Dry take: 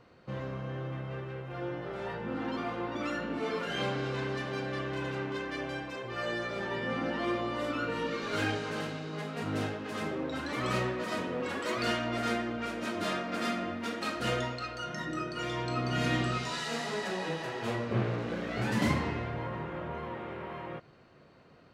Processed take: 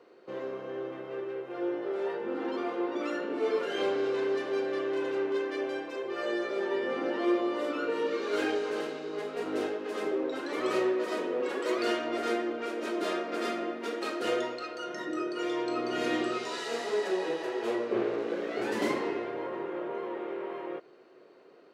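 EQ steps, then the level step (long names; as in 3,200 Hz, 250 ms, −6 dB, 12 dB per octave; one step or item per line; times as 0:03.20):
high-pass with resonance 380 Hz, resonance Q 3.6
−2.0 dB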